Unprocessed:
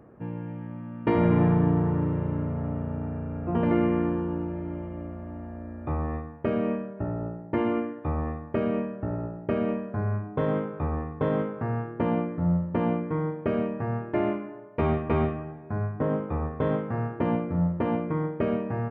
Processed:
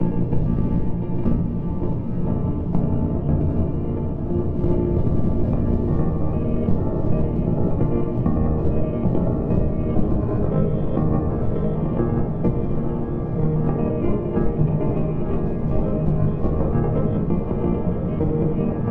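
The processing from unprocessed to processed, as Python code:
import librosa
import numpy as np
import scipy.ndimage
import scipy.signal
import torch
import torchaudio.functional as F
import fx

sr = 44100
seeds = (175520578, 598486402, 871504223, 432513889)

p1 = fx.block_reorder(x, sr, ms=113.0, group=4)
p2 = fx.dmg_wind(p1, sr, seeds[0], corner_hz=160.0, level_db=-29.0)
p3 = fx.peak_eq(p2, sr, hz=1600.0, db=-11.0, octaves=1.3)
p4 = fx.hum_notches(p3, sr, base_hz=50, count=4)
p5 = fx.over_compress(p4, sr, threshold_db=-35.0, ratio=-1.0)
p6 = fx.transient(p5, sr, attack_db=9, sustain_db=-5)
p7 = p6 + fx.echo_diffused(p6, sr, ms=966, feedback_pct=62, wet_db=-6.5, dry=0)
p8 = fx.room_shoebox(p7, sr, seeds[1], volume_m3=91.0, walls='mixed', distance_m=0.73)
p9 = fx.band_squash(p8, sr, depth_pct=40)
y = F.gain(torch.from_numpy(p9), 4.5).numpy()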